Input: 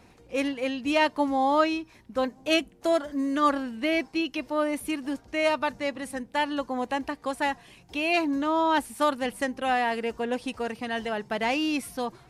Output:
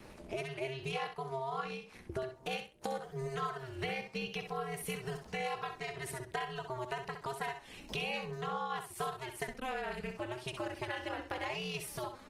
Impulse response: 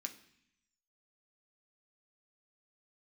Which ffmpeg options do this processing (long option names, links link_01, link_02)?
-filter_complex "[0:a]acrossover=split=360|3000[link_01][link_02][link_03];[link_01]acompressor=threshold=-46dB:ratio=2.5[link_04];[link_04][link_02][link_03]amix=inputs=3:normalize=0,adynamicequalizer=threshold=0.00891:dfrequency=600:dqfactor=3.1:tfrequency=600:tqfactor=3.1:attack=5:release=100:ratio=0.375:range=3.5:mode=cutabove:tftype=bell,acompressor=threshold=-41dB:ratio=6,asettb=1/sr,asplit=3[link_05][link_06][link_07];[link_05]atrim=end=5.434[link_08];[link_06]atrim=start=5.43:end=6.19,asetpts=PTS-STARTPTS,afade=type=in:duration=0.004:curve=qsin,afade=type=out:start_time=0.756:duration=0.004:curve=qsin,bandreject=frequency=95.3:width_type=h:width=4,bandreject=frequency=190.6:width_type=h:width=4,bandreject=frequency=285.9:width_type=h:width=4,bandreject=frequency=381.2:width_type=h:width=4,bandreject=frequency=476.5:width_type=h:width=4,bandreject=frequency=571.8:width_type=h:width=4,bandreject=frequency=667.1:width_type=h:width=4,bandreject=frequency=762.4:width_type=h:width=4,bandreject=frequency=857.7:width_type=h:width=4,bandreject=frequency=953:width_type=h:width=4,bandreject=frequency=1048.3:width_type=h:width=4,bandreject=frequency=1143.6:width_type=h:width=4,bandreject=frequency=1238.9:width_type=h:width=4,bandreject=frequency=1334.2:width_type=h:width=4,bandreject=frequency=1429.5:width_type=h:width=4,bandreject=frequency=1524.8:width_type=h:width=4,bandreject=frequency=1620.1:width_type=h:width=4,bandreject=frequency=1715.4:width_type=h:width=4,bandreject=frequency=1810.7:width_type=h:width=4[link_09];[link_07]atrim=start=6.186[link_10];[link_08][link_09]acrossfade=duration=0.004:curve1=hsin:curve2=qsin[link_11];[link_11][link_10]acrossfade=duration=0.004:curve1=qsin:curve2=hsin,asplit=3[link_12][link_13][link_14];[link_12]afade=type=out:start_time=9.47:duration=0.02[link_15];[link_13]afreqshift=-150,afade=type=in:start_time=9.47:duration=0.02,afade=type=out:start_time=10.17:duration=0.02[link_16];[link_14]afade=type=in:start_time=10.17:duration=0.02[link_17];[link_15][link_16][link_17]amix=inputs=3:normalize=0,aeval=exprs='val(0)*sin(2*PI*130*n/s)':channel_layout=same,aecho=1:1:65|130|195:0.398|0.0756|0.0144,volume=7dB" -ar 48000 -c:a libopus -b:a 24k